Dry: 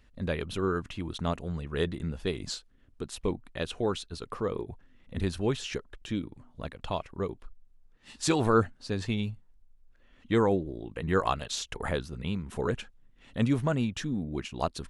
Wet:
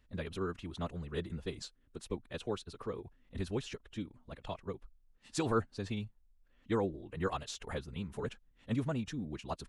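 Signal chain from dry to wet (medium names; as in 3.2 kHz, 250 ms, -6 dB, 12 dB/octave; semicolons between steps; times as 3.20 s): time stretch by phase-locked vocoder 0.65×; short-mantissa float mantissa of 8-bit; trim -7 dB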